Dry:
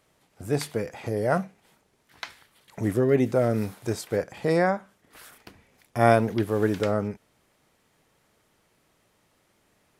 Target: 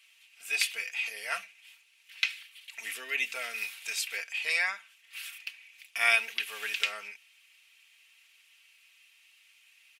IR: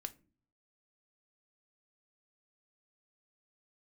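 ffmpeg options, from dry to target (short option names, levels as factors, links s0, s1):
-af "highpass=f=2600:t=q:w=5.5,aecho=1:1:4.4:0.59,volume=1.26"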